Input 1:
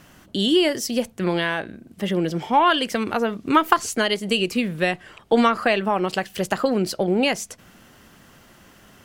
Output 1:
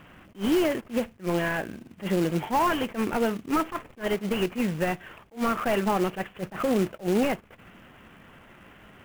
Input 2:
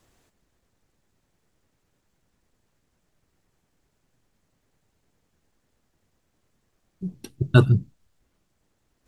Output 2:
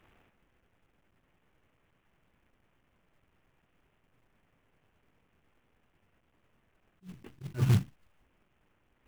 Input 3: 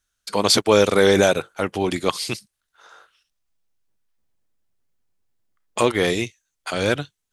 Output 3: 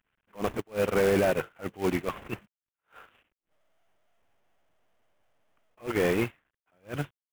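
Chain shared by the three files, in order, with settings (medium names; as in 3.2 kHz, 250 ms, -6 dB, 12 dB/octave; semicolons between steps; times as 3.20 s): CVSD coder 16 kbps; peak limiter -15.5 dBFS; short-mantissa float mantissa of 2-bit; attacks held to a fixed rise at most 280 dB/s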